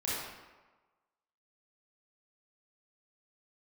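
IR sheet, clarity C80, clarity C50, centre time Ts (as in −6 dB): 0.5 dB, −3.0 dB, 98 ms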